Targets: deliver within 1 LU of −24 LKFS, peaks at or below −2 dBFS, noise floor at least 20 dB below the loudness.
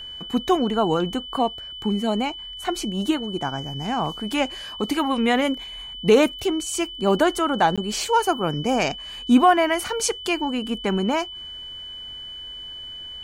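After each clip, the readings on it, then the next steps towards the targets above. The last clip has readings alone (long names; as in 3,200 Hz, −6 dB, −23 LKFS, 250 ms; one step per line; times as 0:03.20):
number of dropouts 1; longest dropout 16 ms; interfering tone 3,000 Hz; level of the tone −34 dBFS; integrated loudness −22.5 LKFS; sample peak −4.5 dBFS; target loudness −24.0 LKFS
→ repair the gap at 0:07.76, 16 ms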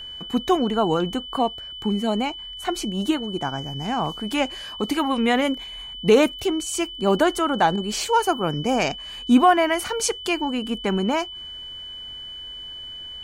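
number of dropouts 0; interfering tone 3,000 Hz; level of the tone −34 dBFS
→ notch filter 3,000 Hz, Q 30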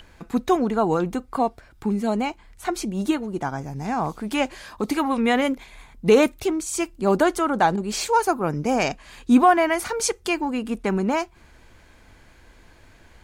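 interfering tone none found; integrated loudness −23.0 LKFS; sample peak −4.5 dBFS; target loudness −24.0 LKFS
→ level −1 dB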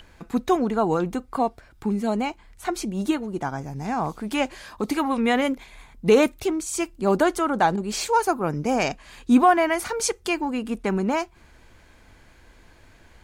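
integrated loudness −24.0 LKFS; sample peak −5.5 dBFS; background noise floor −53 dBFS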